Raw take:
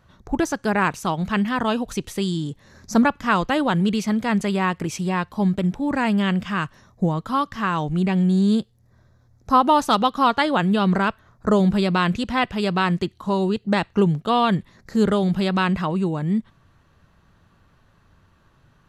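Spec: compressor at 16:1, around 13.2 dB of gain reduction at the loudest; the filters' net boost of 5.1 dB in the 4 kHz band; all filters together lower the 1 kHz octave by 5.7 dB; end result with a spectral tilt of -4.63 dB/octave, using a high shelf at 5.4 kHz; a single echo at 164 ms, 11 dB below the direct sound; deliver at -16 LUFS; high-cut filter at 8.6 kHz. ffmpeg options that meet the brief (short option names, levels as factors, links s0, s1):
-af "lowpass=8600,equalizer=f=1000:t=o:g=-7.5,equalizer=f=4000:t=o:g=8.5,highshelf=f=5400:g=-3.5,acompressor=threshold=0.0501:ratio=16,aecho=1:1:164:0.282,volume=5.62"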